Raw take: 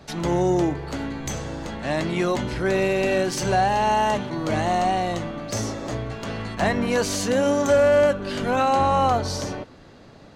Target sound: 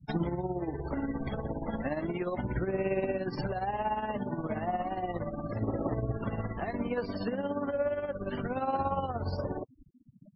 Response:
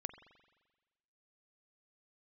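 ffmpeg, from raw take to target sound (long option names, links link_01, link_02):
-af "asetnsamples=nb_out_samples=441:pad=0,asendcmd='1.84 lowpass f 2200',lowpass=frequency=3700:poles=1,afftfilt=real='re*gte(hypot(re,im),0.0282)':imag='im*gte(hypot(re,im),0.0282)':win_size=1024:overlap=0.75,acompressor=threshold=-22dB:ratio=10,alimiter=limit=-23.5dB:level=0:latency=1:release=226,tremolo=f=17:d=0.62,aphaser=in_gain=1:out_gain=1:delay=4.7:decay=0.31:speed=0.34:type=sinusoidal,volume=1.5dB" -ar 22050 -c:a libmp3lame -b:a 16k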